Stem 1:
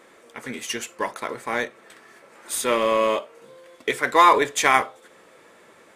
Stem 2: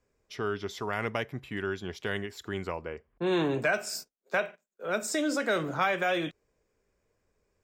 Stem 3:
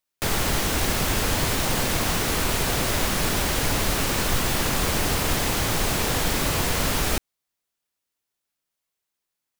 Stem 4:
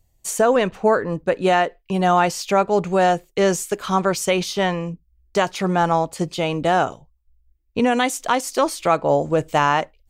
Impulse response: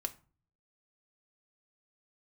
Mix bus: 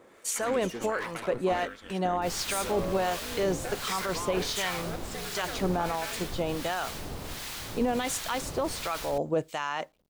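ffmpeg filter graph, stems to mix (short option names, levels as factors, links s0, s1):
-filter_complex "[0:a]acompressor=threshold=0.0631:ratio=6,volume=31.6,asoftclip=hard,volume=0.0316,volume=0.891[s0];[1:a]acompressor=threshold=0.0398:ratio=6,aeval=exprs='val(0)*sin(2*PI*120*n/s)':c=same,volume=0.891[s1];[2:a]adelay=2000,volume=0.251[s2];[3:a]acrusher=bits=9:mix=0:aa=0.000001,highpass=f=210:p=1,volume=0.596[s3];[s2][s3]amix=inputs=2:normalize=0,equalizer=f=4000:t=o:w=0.77:g=3.5,alimiter=limit=0.141:level=0:latency=1:release=14,volume=1[s4];[s0][s1][s4]amix=inputs=3:normalize=0,acrossover=split=980[s5][s6];[s5]aeval=exprs='val(0)*(1-0.7/2+0.7/2*cos(2*PI*1.4*n/s))':c=same[s7];[s6]aeval=exprs='val(0)*(1-0.7/2-0.7/2*cos(2*PI*1.4*n/s))':c=same[s8];[s7][s8]amix=inputs=2:normalize=0"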